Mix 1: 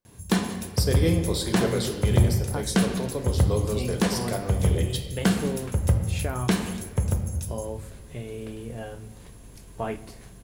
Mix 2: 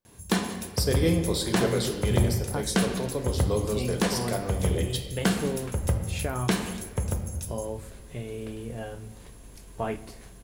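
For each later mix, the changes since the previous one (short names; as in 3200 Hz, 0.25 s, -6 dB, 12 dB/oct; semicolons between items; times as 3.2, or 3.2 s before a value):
first sound: add bell 110 Hz -5.5 dB 2 oct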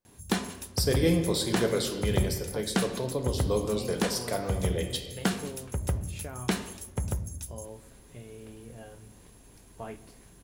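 first sound: send off; second sound -10.0 dB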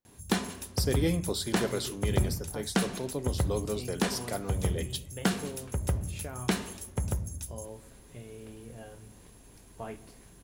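speech: send off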